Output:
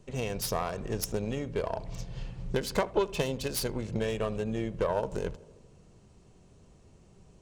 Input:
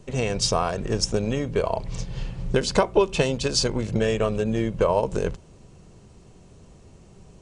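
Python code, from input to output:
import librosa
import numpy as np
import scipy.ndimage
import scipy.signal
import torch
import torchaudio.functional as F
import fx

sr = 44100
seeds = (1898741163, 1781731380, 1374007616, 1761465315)

y = fx.self_delay(x, sr, depth_ms=0.11)
y = fx.echo_tape(y, sr, ms=78, feedback_pct=77, wet_db=-18.5, lp_hz=1500.0, drive_db=8.0, wow_cents=19)
y = y * 10.0 ** (-8.0 / 20.0)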